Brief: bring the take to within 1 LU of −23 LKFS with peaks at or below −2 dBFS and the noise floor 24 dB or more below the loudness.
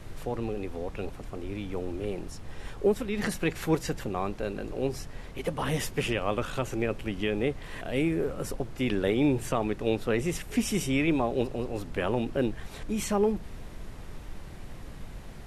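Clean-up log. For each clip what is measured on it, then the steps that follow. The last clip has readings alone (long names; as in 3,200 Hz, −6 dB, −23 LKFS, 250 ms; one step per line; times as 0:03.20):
background noise floor −43 dBFS; target noise floor −55 dBFS; integrated loudness −30.5 LKFS; sample peak −13.0 dBFS; target loudness −23.0 LKFS
→ noise reduction from a noise print 12 dB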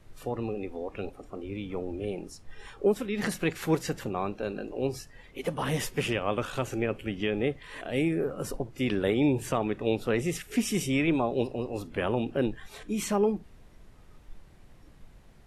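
background noise floor −54 dBFS; target noise floor −55 dBFS
→ noise reduction from a noise print 6 dB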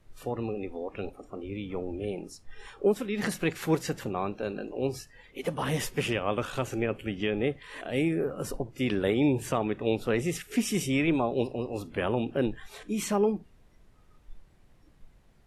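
background noise floor −60 dBFS; integrated loudness −30.5 LKFS; sample peak −14.0 dBFS; target loudness −23.0 LKFS
→ level +7.5 dB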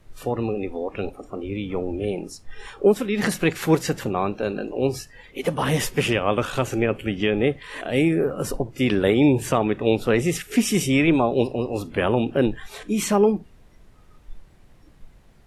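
integrated loudness −23.0 LKFS; sample peak −6.5 dBFS; background noise floor −52 dBFS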